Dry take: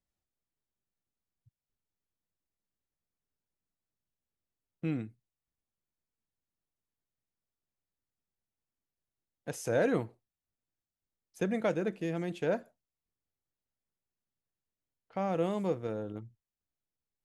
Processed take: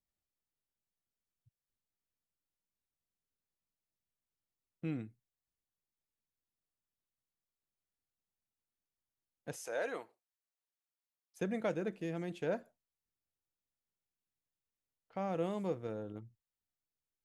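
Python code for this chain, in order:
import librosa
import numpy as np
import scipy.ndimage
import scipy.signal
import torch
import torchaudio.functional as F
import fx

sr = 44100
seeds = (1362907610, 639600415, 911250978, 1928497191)

y = fx.highpass(x, sr, hz=600.0, slope=12, at=(9.56, 11.41))
y = y * 10.0 ** (-5.0 / 20.0)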